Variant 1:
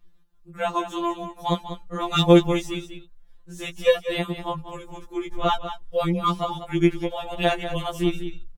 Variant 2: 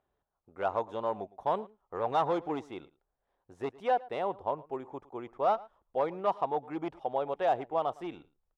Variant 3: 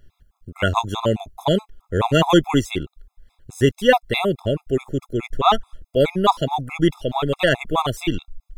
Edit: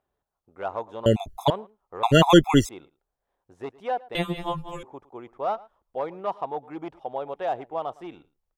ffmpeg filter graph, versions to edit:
-filter_complex "[2:a]asplit=2[a][b];[1:a]asplit=4[c][d][e][f];[c]atrim=end=1.062[g];[a]atrim=start=1.058:end=1.502[h];[d]atrim=start=1.498:end=2.032[i];[b]atrim=start=2.028:end=2.692[j];[e]atrim=start=2.688:end=4.152[k];[0:a]atrim=start=4.148:end=4.832[l];[f]atrim=start=4.828[m];[g][h]acrossfade=d=0.004:c1=hsin:c2=hsin[n];[n][i]acrossfade=d=0.004:c1=hsin:c2=hsin[o];[o][j]acrossfade=d=0.004:c1=hsin:c2=hsin[p];[p][k]acrossfade=d=0.004:c1=hsin:c2=hsin[q];[q][l]acrossfade=d=0.004:c1=hsin:c2=hsin[r];[r][m]acrossfade=d=0.004:c1=hsin:c2=hsin"

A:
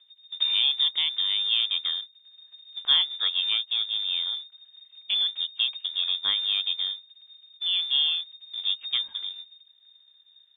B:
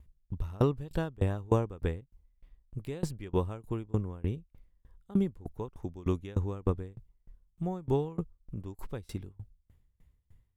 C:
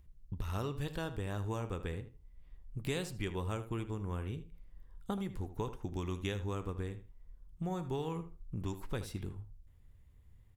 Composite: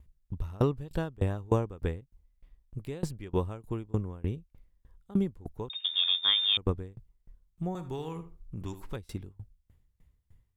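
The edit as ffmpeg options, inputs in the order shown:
-filter_complex "[1:a]asplit=3[a][b][c];[a]atrim=end=5.702[d];[0:a]atrim=start=5.698:end=6.572[e];[b]atrim=start=6.568:end=7.752[f];[2:a]atrim=start=7.748:end=8.962[g];[c]atrim=start=8.958[h];[d][e]acrossfade=d=0.004:c1=hsin:c2=hsin[i];[i][f]acrossfade=d=0.004:c1=hsin:c2=hsin[j];[j][g]acrossfade=d=0.004:c1=hsin:c2=hsin[k];[k][h]acrossfade=d=0.004:c1=hsin:c2=hsin"

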